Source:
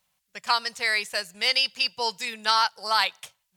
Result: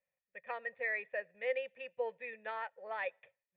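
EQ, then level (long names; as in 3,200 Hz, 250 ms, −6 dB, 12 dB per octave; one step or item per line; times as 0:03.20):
formant resonators in series e
dynamic equaliser 660 Hz, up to +5 dB, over −52 dBFS, Q 0.85
0.0 dB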